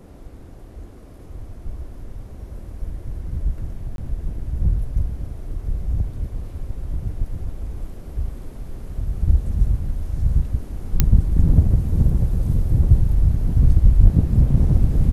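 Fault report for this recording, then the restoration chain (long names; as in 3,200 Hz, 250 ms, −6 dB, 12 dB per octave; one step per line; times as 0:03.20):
0:03.96–0:03.98: drop-out 22 ms
0:11.00: click −1 dBFS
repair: click removal
repair the gap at 0:03.96, 22 ms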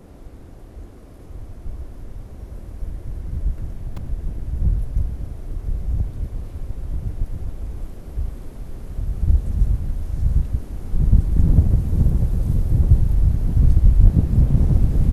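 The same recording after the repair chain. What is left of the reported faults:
none of them is left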